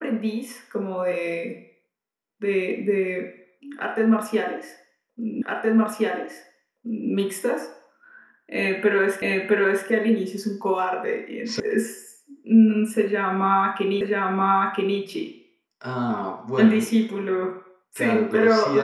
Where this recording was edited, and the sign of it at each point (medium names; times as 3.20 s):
5.42 s: repeat of the last 1.67 s
9.22 s: repeat of the last 0.66 s
11.60 s: sound stops dead
14.01 s: repeat of the last 0.98 s